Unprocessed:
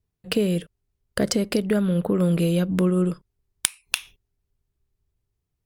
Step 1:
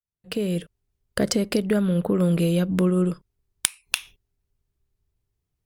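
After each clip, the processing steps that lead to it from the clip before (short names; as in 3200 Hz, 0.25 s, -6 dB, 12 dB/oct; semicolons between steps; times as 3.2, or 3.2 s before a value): opening faded in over 0.66 s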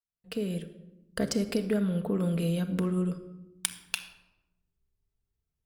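shoebox room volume 3900 m³, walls furnished, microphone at 1.6 m; gain -8.5 dB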